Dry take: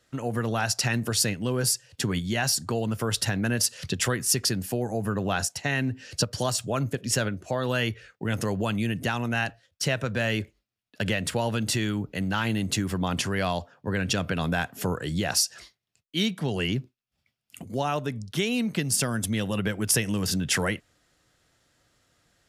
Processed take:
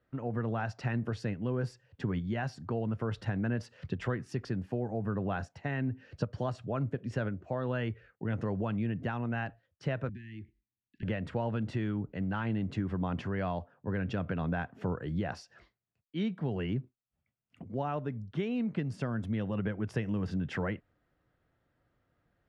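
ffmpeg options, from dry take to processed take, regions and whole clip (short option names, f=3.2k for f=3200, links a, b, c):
-filter_complex "[0:a]asettb=1/sr,asplit=3[a][b][c];[a]atrim=end=10.094[d];[b]atrim=start=10.09:end=11.03,asetpts=PTS-STARTPTS,afade=t=in:d=0.004:c=qsin,afade=t=out:st=0.936:d=0.004:c=qsin,acompressor=threshold=-35dB:ratio=4:attack=3.2:release=140:knee=1:detection=peak,asuperstop=centerf=810:order=20:qfactor=0.6[e];[c]atrim=start=11.026[f];[d][e]acrossfade=d=0.004:c1=hsin:c2=qsin[g];[g][f]acrossfade=d=0.004:c1=qsin:c2=hsin,lowpass=1.7k,lowshelf=f=370:g=3.5,volume=-7.5dB"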